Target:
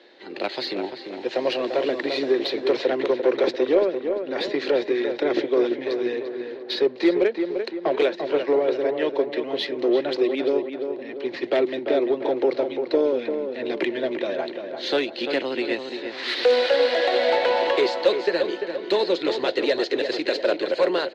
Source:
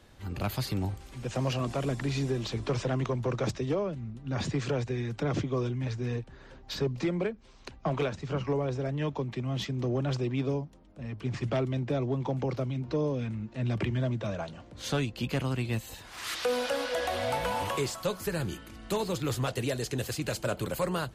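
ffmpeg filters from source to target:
-filter_complex "[0:a]highpass=f=310:w=0.5412,highpass=f=310:w=1.3066,equalizer=f=360:t=q:w=4:g=8,equalizer=f=530:t=q:w=4:g=5,equalizer=f=1200:t=q:w=4:g=-8,equalizer=f=1900:t=q:w=4:g=6,equalizer=f=4100:t=q:w=4:g=9,lowpass=f=4400:w=0.5412,lowpass=f=4400:w=1.3066,aeval=exprs='0.188*(cos(1*acos(clip(val(0)/0.188,-1,1)))-cos(1*PI/2))+0.00841*(cos(5*acos(clip(val(0)/0.188,-1,1)))-cos(5*PI/2))+0.00841*(cos(7*acos(clip(val(0)/0.188,-1,1)))-cos(7*PI/2))':c=same,asplit=2[s0][s1];[s1]adelay=344,lowpass=f=2300:p=1,volume=0.473,asplit=2[s2][s3];[s3]adelay=344,lowpass=f=2300:p=1,volume=0.5,asplit=2[s4][s5];[s5]adelay=344,lowpass=f=2300:p=1,volume=0.5,asplit=2[s6][s7];[s7]adelay=344,lowpass=f=2300:p=1,volume=0.5,asplit=2[s8][s9];[s9]adelay=344,lowpass=f=2300:p=1,volume=0.5,asplit=2[s10][s11];[s11]adelay=344,lowpass=f=2300:p=1,volume=0.5[s12];[s2][s4][s6][s8][s10][s12]amix=inputs=6:normalize=0[s13];[s0][s13]amix=inputs=2:normalize=0,volume=2.11"

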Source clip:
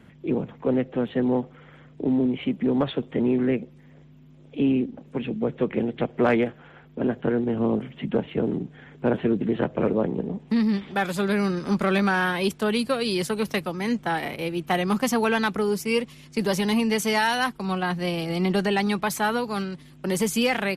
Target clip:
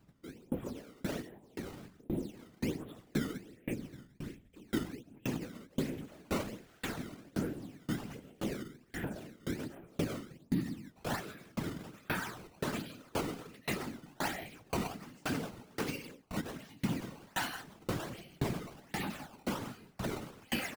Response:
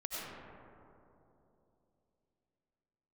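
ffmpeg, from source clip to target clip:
-filter_complex "[0:a]asettb=1/sr,asplit=3[s0][s1][s2];[s0]atrim=end=5.714[s3];[s1]atrim=start=5.71:end=8.3,asetpts=PTS-STARTPTS,afade=t=in:d=0.004:c=qsin,afade=t=out:st=2.586:d=0.004:c=qsin,aeval=exprs='val(0)+0.5*0.0178*sgn(val(0))':c=same[s4];[s2]atrim=start=8.296[s5];[s3][s4]acrossfade=d=0.004:c1=hsin:c2=qsin[s6];[s6][s5]acrossfade=d=0.004:c1=qsin:c2=hsin,asplit=5[s7][s8][s9][s10][s11];[s8]adelay=322,afreqshift=-44,volume=0.112[s12];[s9]adelay=644,afreqshift=-88,volume=0.0525[s13];[s10]adelay=966,afreqshift=-132,volume=0.0248[s14];[s11]adelay=1288,afreqshift=-176,volume=0.0116[s15];[s7][s12][s13][s14][s15]amix=inputs=5:normalize=0,agate=range=0.126:threshold=0.00501:ratio=16:detection=peak,equalizer=f=500:t=o:w=1:g=-8,equalizer=f=1000:t=o:w=1:g=-5,equalizer=f=8000:t=o:w=1:g=4,acontrast=65,asplit=2[s16][s17];[s17]adelay=13,volume=0.473[s18];[s16][s18]amix=inputs=2:normalize=0[s19];[1:a]atrim=start_sample=2205,afade=t=out:st=0.23:d=0.01,atrim=end_sample=10584[s20];[s19][s20]afir=irnorm=-1:irlink=0,acompressor=threshold=0.02:ratio=8,bandreject=f=50:t=h:w=6,bandreject=f=100:t=h:w=6,bandreject=f=150:t=h:w=6,bandreject=f=200:t=h:w=6,bandreject=f=250:t=h:w=6,bandreject=f=300:t=h:w=6,bandreject=f=350:t=h:w=6,bandreject=f=400:t=h:w=6,acrusher=samples=15:mix=1:aa=0.000001:lfo=1:lforange=24:lforate=1.3,afftfilt=real='hypot(re,im)*cos(2*PI*random(0))':imag='hypot(re,im)*sin(2*PI*random(1))':win_size=512:overlap=0.75,aeval=exprs='val(0)*pow(10,-32*if(lt(mod(1.9*n/s,1),2*abs(1.9)/1000),1-mod(1.9*n/s,1)/(2*abs(1.9)/1000),(mod(1.9*n/s,1)-2*abs(1.9)/1000)/(1-2*abs(1.9)/1000))/20)':c=same,volume=3.98"

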